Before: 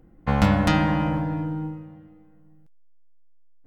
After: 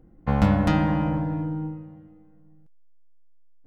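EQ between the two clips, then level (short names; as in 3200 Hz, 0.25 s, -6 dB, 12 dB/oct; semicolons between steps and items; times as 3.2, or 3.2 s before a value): tilt shelf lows +4 dB, about 1300 Hz; -4.0 dB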